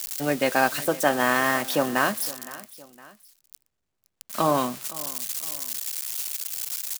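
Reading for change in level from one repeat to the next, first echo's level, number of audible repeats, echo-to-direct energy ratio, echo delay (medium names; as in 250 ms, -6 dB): -7.0 dB, -18.5 dB, 2, -17.5 dB, 513 ms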